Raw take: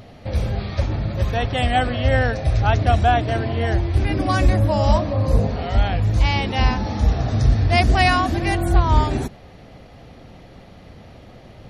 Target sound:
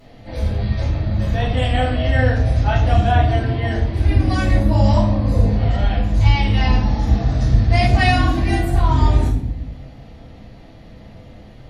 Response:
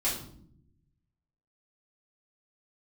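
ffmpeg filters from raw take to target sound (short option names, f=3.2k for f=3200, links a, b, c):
-filter_complex "[1:a]atrim=start_sample=2205,asetrate=38367,aresample=44100[a];[0:a][a]afir=irnorm=-1:irlink=0,volume=-9.5dB"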